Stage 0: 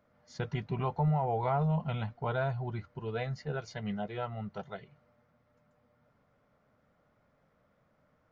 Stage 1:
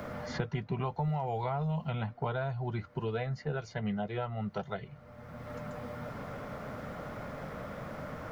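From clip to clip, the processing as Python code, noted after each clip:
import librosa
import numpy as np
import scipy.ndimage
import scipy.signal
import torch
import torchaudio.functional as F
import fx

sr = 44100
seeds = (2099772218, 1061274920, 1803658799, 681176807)

y = fx.band_squash(x, sr, depth_pct=100)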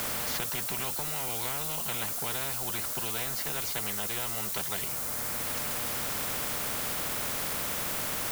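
y = fx.peak_eq(x, sr, hz=1900.0, db=-4.5, octaves=0.29)
y = fx.dmg_noise_colour(y, sr, seeds[0], colour='violet', level_db=-52.0)
y = fx.spectral_comp(y, sr, ratio=4.0)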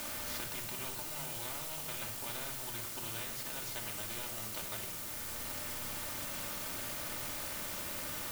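y = np.where(np.abs(x) >= 10.0 ** (-31.5 / 20.0), x, 0.0)
y = fx.room_shoebox(y, sr, seeds[1], volume_m3=2300.0, walls='furnished', distance_m=2.6)
y = y * librosa.db_to_amplitude(-8.5)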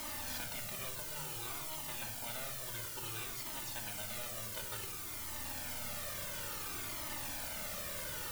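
y = fx.comb_cascade(x, sr, direction='falling', hz=0.57)
y = y * librosa.db_to_amplitude(3.0)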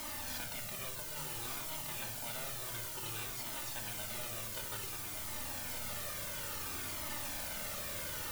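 y = x + 10.0 ** (-6.5 / 20.0) * np.pad(x, (int(1170 * sr / 1000.0), 0))[:len(x)]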